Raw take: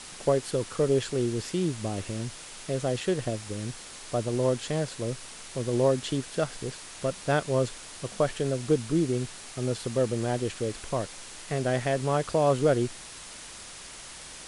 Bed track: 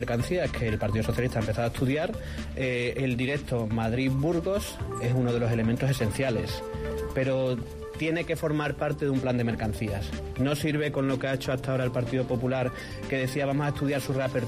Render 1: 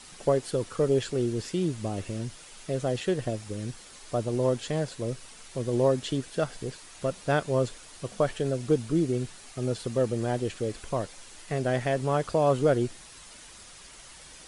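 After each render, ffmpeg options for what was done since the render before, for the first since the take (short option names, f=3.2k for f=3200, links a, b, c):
-af "afftdn=nr=7:nf=-44"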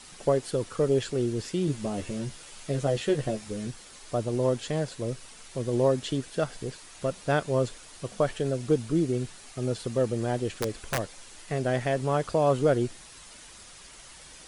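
-filter_complex "[0:a]asettb=1/sr,asplit=3[a][b][c];[a]atrim=end=1.664[d];[b]atrim=start=1.66:end=3.68,asetpts=PTS-STARTPTS,afade=t=in:d=0.004:c=qsin,afade=t=out:st=2.016:d=0.004:c=qsin,asplit=2[e][f];[f]adelay=14,volume=-4dB[g];[e][g]amix=inputs=2:normalize=0,atrim=end_sample=89082[h];[c]atrim=start=3.676[i];[d][h]acrossfade=d=0.004:c1=hsin:c2=qsin[j];[j][i]acrossfade=d=0.004:c1=qsin:c2=hsin,asplit=3[k][l][m];[k]afade=t=out:st=10.57:d=0.02[n];[l]aeval=exprs='(mod(10.6*val(0)+1,2)-1)/10.6':c=same,afade=t=in:st=10.57:d=0.02,afade=t=out:st=10.97:d=0.02[o];[m]afade=t=in:st=10.97:d=0.02[p];[n][o][p]amix=inputs=3:normalize=0"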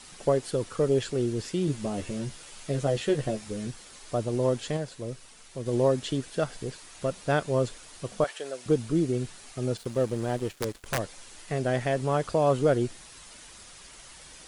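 -filter_complex "[0:a]asettb=1/sr,asplit=3[a][b][c];[a]atrim=end=8.244[d];[b]atrim=start=8.24:end=8.66,asetpts=PTS-STARTPTS,afade=t=in:d=0.004:c=qsin,afade=t=out:st=0.416:d=0.004:c=qsin,highpass=620[e];[c]atrim=start=8.656[f];[d][e]acrossfade=d=0.004:c1=hsin:c2=qsin[g];[g][f]acrossfade=d=0.004:c1=qsin:c2=hsin,asettb=1/sr,asplit=3[h][i][j];[h]atrim=end=9.774[k];[i]atrim=start=9.77:end=10.88,asetpts=PTS-STARTPTS,afade=t=in:d=0.004:c=qsin,afade=t=out:st=1.106:d=0.004:c=qsin,aeval=exprs='sgn(val(0))*max(abs(val(0))-0.00668,0)':c=same[l];[j]atrim=start=10.876[m];[k][l]acrossfade=d=0.004:c1=hsin:c2=qsin[n];[n][m]acrossfade=d=0.004:c1=qsin:c2=hsin,asplit=3[o][p][q];[o]atrim=end=4.772[r];[p]atrim=start=4.768:end=5.662,asetpts=PTS-STARTPTS,volume=-4dB[s];[q]atrim=start=5.658[t];[r][s]acrossfade=d=0.004:c1=hsin:c2=hsin[u];[u][t]acrossfade=d=0.004:c1=hsin:c2=hsin"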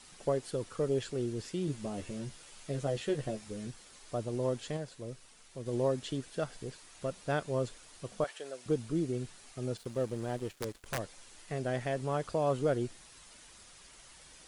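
-af "volume=-7dB"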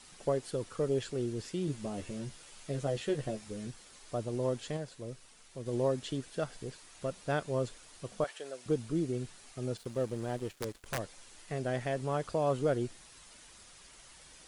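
-af anull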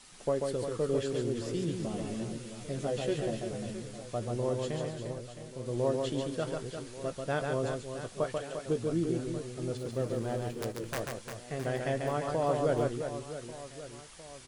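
-filter_complex "[0:a]asplit=2[a][b];[b]adelay=18,volume=-12dB[c];[a][c]amix=inputs=2:normalize=0,aecho=1:1:140|350|665|1138|1846:0.631|0.398|0.251|0.158|0.1"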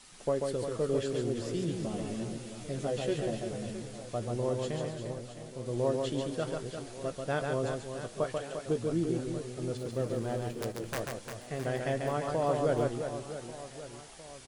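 -filter_complex "[0:a]asplit=4[a][b][c][d];[b]adelay=479,afreqshift=84,volume=-22dB[e];[c]adelay=958,afreqshift=168,volume=-28dB[f];[d]adelay=1437,afreqshift=252,volume=-34dB[g];[a][e][f][g]amix=inputs=4:normalize=0"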